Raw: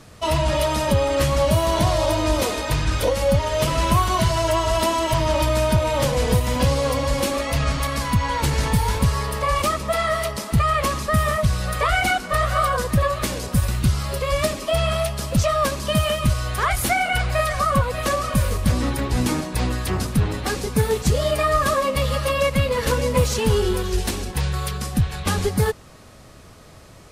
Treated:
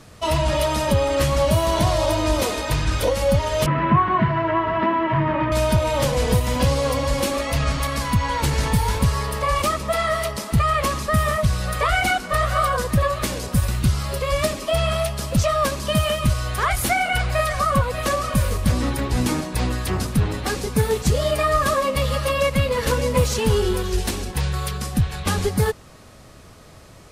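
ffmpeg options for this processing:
ffmpeg -i in.wav -filter_complex "[0:a]asettb=1/sr,asplit=3[link_01][link_02][link_03];[link_01]atrim=end=3.664[link_04];[link_02]atrim=start=3.66:end=5.52,asetpts=PTS-STARTPTS,afade=type=in:duration=0.004:curve=qsin,afade=type=out:start_time=1.856:duration=0.004:curve=qsin,highpass=140,equalizer=frequency=150:width_type=q:width=4:gain=10,equalizer=frequency=220:width_type=q:width=4:gain=4,equalizer=frequency=320:width_type=q:width=4:gain=4,equalizer=frequency=590:width_type=q:width=4:gain=-5,equalizer=frequency=1100:width_type=q:width=4:gain=3,equalizer=frequency=1800:width_type=q:width=4:gain=6,lowpass=frequency=2300:width=0.5412,lowpass=frequency=2300:width=1.3066[link_05];[link_03]atrim=start=5.516[link_06];[link_04][link_05]acrossfade=duration=0.004:curve1=hsin:curve2=qsin[link_07];[link_07][link_06]acrossfade=duration=0.004:curve1=qsin:curve2=hsin" out.wav

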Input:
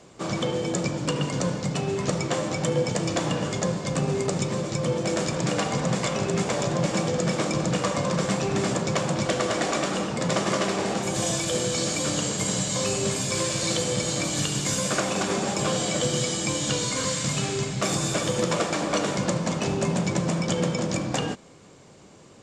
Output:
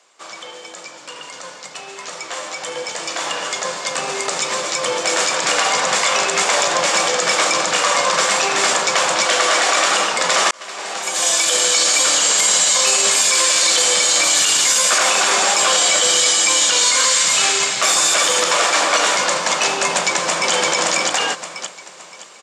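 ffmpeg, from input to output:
ffmpeg -i in.wav -filter_complex "[0:a]asplit=2[link_01][link_02];[link_02]afade=type=in:start_time=19.84:duration=0.01,afade=type=out:start_time=20.52:duration=0.01,aecho=0:1:570|1140|1710|2280|2850:0.707946|0.247781|0.0867234|0.0303532|0.0106236[link_03];[link_01][link_03]amix=inputs=2:normalize=0,asplit=2[link_04][link_05];[link_04]atrim=end=10.51,asetpts=PTS-STARTPTS,afade=type=out:start_time=10.506:duration=0.004:curve=hsin[link_06];[link_05]atrim=start=10.51,asetpts=PTS-STARTPTS,afade=type=in:duration=2.06:curve=qsin[link_07];[link_06][link_07]concat=n=2:v=0:a=1,highpass=970,alimiter=limit=-23dB:level=0:latency=1:release=22,dynaudnorm=framelen=660:gausssize=11:maxgain=16.5dB,volume=1dB" out.wav

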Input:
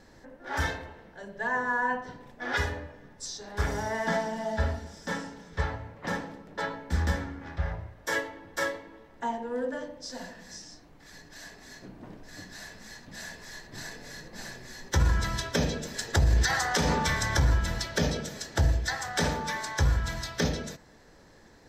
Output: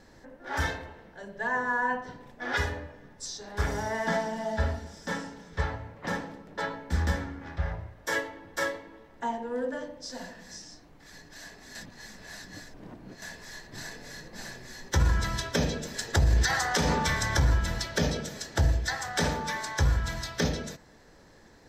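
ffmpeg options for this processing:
ffmpeg -i in.wav -filter_complex "[0:a]asplit=3[link_01][link_02][link_03];[link_01]atrim=end=11.752[link_04];[link_02]atrim=start=11.748:end=13.222,asetpts=PTS-STARTPTS,areverse[link_05];[link_03]atrim=start=13.218[link_06];[link_04][link_05]acrossfade=duration=0.004:curve1=hsin:curve2=hsin[link_07];[link_07][link_06]acrossfade=duration=0.004:curve1=hsin:curve2=hsin" out.wav

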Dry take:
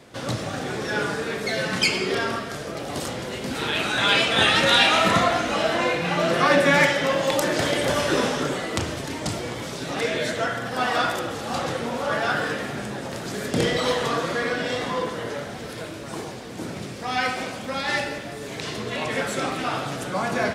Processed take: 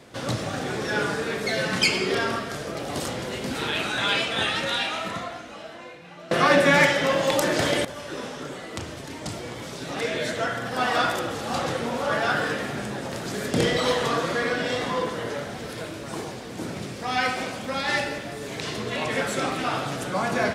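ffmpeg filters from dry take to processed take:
ffmpeg -i in.wav -filter_complex "[0:a]asplit=3[link_01][link_02][link_03];[link_01]atrim=end=6.31,asetpts=PTS-STARTPTS,afade=type=out:start_time=3.41:duration=2.9:curve=qua:silence=0.0891251[link_04];[link_02]atrim=start=6.31:end=7.85,asetpts=PTS-STARTPTS,afade=type=in:duration=0.004:curve=hsin:silence=0.0891251,afade=type=out:start_time=1.536:duration=0.004:curve=hsin:silence=0.16788[link_05];[link_03]atrim=start=7.85,asetpts=PTS-STARTPTS,afade=type=in:duration=3.16:silence=0.16788[link_06];[link_04][link_05][link_06]concat=n=3:v=0:a=1" out.wav

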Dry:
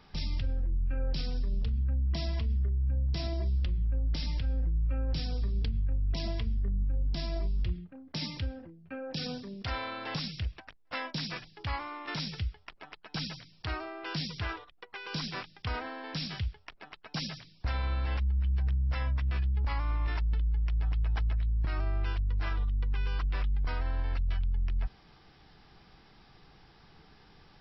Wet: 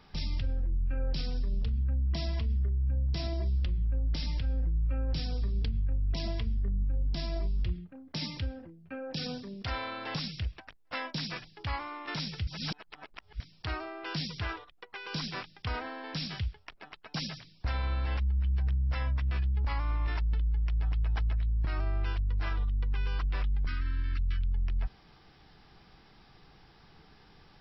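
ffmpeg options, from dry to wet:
ffmpeg -i in.wav -filter_complex "[0:a]asettb=1/sr,asplit=3[link_01][link_02][link_03];[link_01]atrim=end=23.664[link_04];[link_02]atrim=start=23.66:end=24.52,asetpts=PTS-STARTPTS,afade=type=in:duration=0.004:curve=qsin,afade=type=out:start_time=0.856:duration=0.004:curve=qsin,asuperstop=centerf=650:order=8:qfactor=0.75[link_05];[link_03]atrim=start=24.516[link_06];[link_04][link_05]acrossfade=duration=0.004:curve1=hsin:curve2=qsin[link_07];[link_07][link_06]acrossfade=duration=0.004:curve1=qsin:curve2=hsin,asplit=3[link_08][link_09][link_10];[link_08]atrim=end=12.472[link_11];[link_09]atrim=start=12.468:end=13.402,asetpts=PTS-STARTPTS,areverse[link_12];[link_10]atrim=start=13.398[link_13];[link_11][link_12]acrossfade=duration=0.004:curve1=hsin:curve2=hsin[link_14];[link_14][link_13]acrossfade=duration=0.004:curve1=hsin:curve2=hsin" out.wav

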